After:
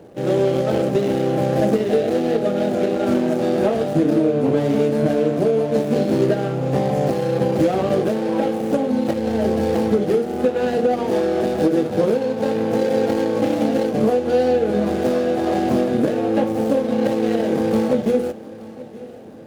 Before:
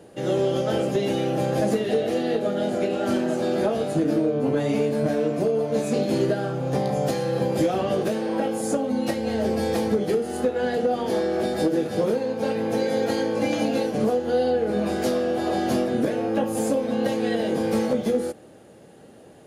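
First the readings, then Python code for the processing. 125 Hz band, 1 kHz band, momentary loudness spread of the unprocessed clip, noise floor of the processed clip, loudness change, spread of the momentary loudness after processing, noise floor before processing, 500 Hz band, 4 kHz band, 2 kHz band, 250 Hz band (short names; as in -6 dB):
+5.0 dB, +4.0 dB, 2 LU, -36 dBFS, +4.5 dB, 3 LU, -48 dBFS, +4.5 dB, 0.0 dB, +2.0 dB, +5.0 dB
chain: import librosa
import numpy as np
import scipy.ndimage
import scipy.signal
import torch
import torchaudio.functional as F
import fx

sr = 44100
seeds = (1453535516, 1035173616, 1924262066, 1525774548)

p1 = scipy.ndimage.median_filter(x, 25, mode='constant')
p2 = p1 + fx.echo_feedback(p1, sr, ms=874, feedback_pct=57, wet_db=-19.0, dry=0)
y = F.gain(torch.from_numpy(p2), 5.0).numpy()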